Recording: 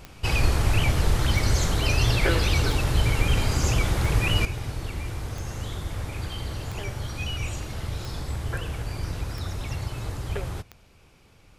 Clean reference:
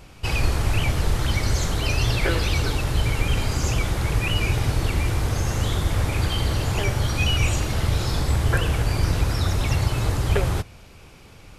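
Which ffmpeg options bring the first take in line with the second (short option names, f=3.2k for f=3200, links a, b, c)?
-af "adeclick=t=4,asetnsamples=n=441:p=0,asendcmd='4.45 volume volume 9.5dB',volume=0dB"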